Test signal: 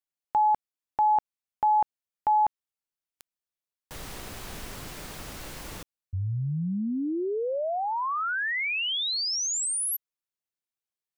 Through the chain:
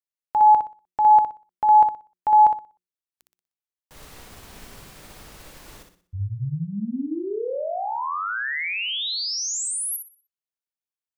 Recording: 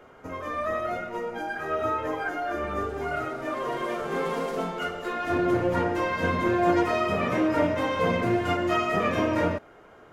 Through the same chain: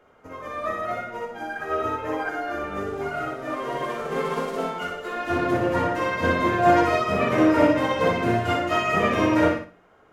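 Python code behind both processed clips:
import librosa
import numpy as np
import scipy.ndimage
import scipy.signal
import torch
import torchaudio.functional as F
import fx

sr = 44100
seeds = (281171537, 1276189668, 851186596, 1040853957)

p1 = fx.hum_notches(x, sr, base_hz=60, count=6)
p2 = p1 + fx.echo_feedback(p1, sr, ms=61, feedback_pct=39, wet_db=-4.0, dry=0)
p3 = fx.upward_expand(p2, sr, threshold_db=-42.0, expansion=1.5)
y = p3 * 10.0 ** (5.0 / 20.0)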